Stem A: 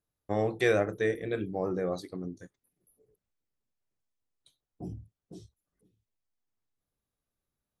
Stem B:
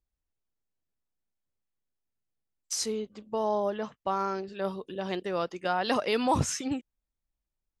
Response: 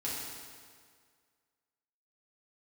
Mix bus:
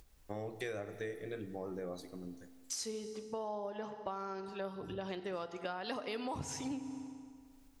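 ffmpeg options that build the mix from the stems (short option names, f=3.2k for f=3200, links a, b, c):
-filter_complex "[0:a]highshelf=f=4.9k:g=6.5,volume=-10dB,asplit=2[a][b];[b]volume=-15dB[c];[1:a]acompressor=mode=upward:threshold=-38dB:ratio=2.5,volume=-5dB,asplit=2[d][e];[e]volume=-13dB[f];[2:a]atrim=start_sample=2205[g];[c][f]amix=inputs=2:normalize=0[h];[h][g]afir=irnorm=-1:irlink=0[i];[a][d][i]amix=inputs=3:normalize=0,acompressor=threshold=-37dB:ratio=6"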